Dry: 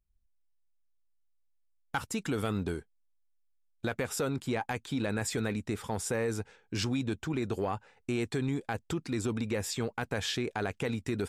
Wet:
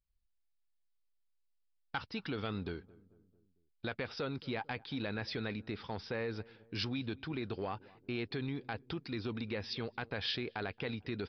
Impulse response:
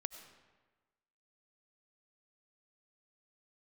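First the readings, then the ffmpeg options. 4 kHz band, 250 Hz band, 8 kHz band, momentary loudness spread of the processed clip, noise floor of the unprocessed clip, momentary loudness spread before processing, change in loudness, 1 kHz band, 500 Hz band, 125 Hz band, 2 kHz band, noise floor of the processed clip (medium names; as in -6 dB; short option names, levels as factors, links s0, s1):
-1.5 dB, -7.0 dB, under -25 dB, 5 LU, -71 dBFS, 5 LU, -6.0 dB, -6.0 dB, -6.5 dB, -7.0 dB, -4.0 dB, -77 dBFS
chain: -filter_complex "[0:a]aresample=11025,aresample=44100,highshelf=f=2600:g=9,asplit=2[s0][s1];[s1]adelay=223,lowpass=f=880:p=1,volume=0.0891,asplit=2[s2][s3];[s3]adelay=223,lowpass=f=880:p=1,volume=0.55,asplit=2[s4][s5];[s5]adelay=223,lowpass=f=880:p=1,volume=0.55,asplit=2[s6][s7];[s7]adelay=223,lowpass=f=880:p=1,volume=0.55[s8];[s2][s4][s6][s8]amix=inputs=4:normalize=0[s9];[s0][s9]amix=inputs=2:normalize=0,volume=0.447"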